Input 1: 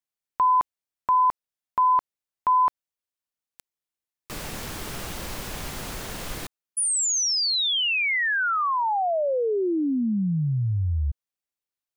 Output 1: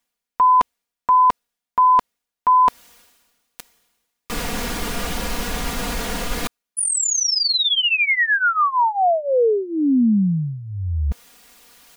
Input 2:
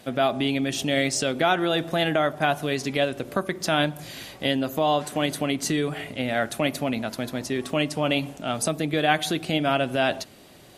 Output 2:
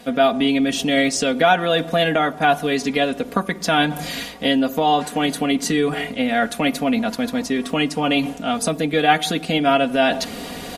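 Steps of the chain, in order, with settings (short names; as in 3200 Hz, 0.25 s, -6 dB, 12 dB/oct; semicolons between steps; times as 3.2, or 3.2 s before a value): reverse; upward compressor, threshold -23 dBFS; reverse; high shelf 5500 Hz -4 dB; comb 4.2 ms, depth 79%; gain +3.5 dB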